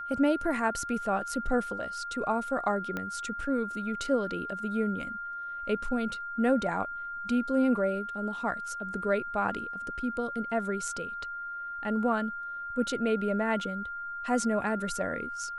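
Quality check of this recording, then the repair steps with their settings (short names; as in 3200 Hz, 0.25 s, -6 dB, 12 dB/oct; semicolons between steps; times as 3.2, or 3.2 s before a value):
tone 1400 Hz -35 dBFS
2.97 pop -20 dBFS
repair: de-click; notch 1400 Hz, Q 30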